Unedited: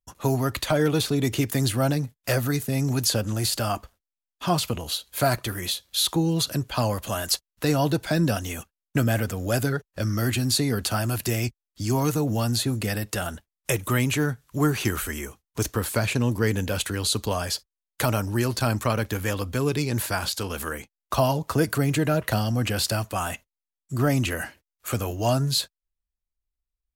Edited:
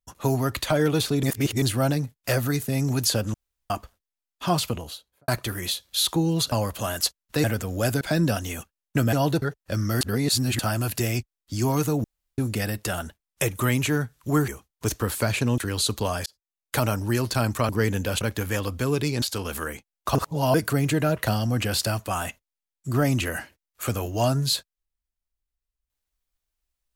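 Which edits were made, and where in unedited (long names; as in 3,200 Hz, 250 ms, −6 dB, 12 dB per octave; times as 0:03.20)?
0:01.23–0:01.62: reverse
0:03.34–0:03.70: fill with room tone
0:04.64–0:05.28: fade out and dull
0:06.52–0:06.80: remove
0:07.72–0:08.01: swap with 0:09.13–0:09.70
0:10.29–0:10.87: reverse
0:12.32–0:12.66: fill with room tone
0:14.76–0:15.22: remove
0:16.32–0:16.84: move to 0:18.95
0:17.52–0:18.03: fade in
0:19.96–0:20.27: remove
0:21.20–0:21.59: reverse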